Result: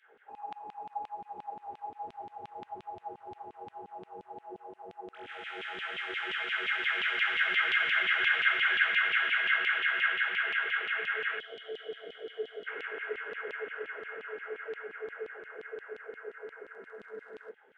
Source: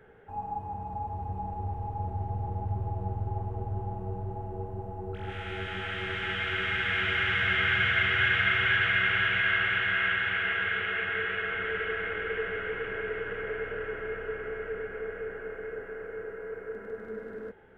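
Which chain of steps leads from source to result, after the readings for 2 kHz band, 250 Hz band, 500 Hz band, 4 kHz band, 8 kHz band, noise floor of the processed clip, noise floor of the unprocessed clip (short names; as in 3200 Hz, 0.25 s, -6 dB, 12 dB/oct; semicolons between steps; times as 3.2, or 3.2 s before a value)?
-2.0 dB, under -10 dB, -6.5 dB, -1.5 dB, n/a, -62 dBFS, -43 dBFS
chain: LFO high-pass saw down 5.7 Hz 210–3200 Hz; low shelf 410 Hz -8.5 dB; downsampling 22050 Hz; spectral gain 11.39–12.67, 780–2900 Hz -18 dB; gain -4 dB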